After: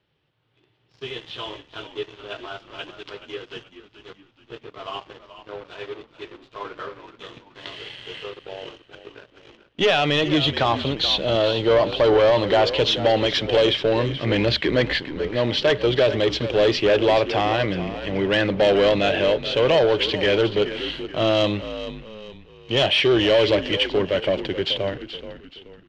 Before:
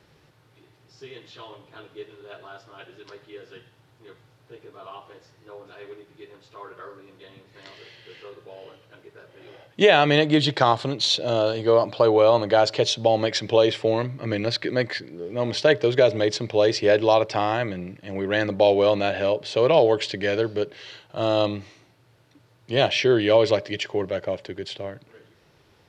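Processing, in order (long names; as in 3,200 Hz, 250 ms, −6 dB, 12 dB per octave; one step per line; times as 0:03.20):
parametric band 3,100 Hz +11 dB 0.63 octaves
automatic gain control gain up to 6 dB
leveller curve on the samples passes 3
high-frequency loss of the air 160 metres
on a send: echo with shifted repeats 428 ms, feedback 40%, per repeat −59 Hz, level −12 dB
on the sum: level −9 dB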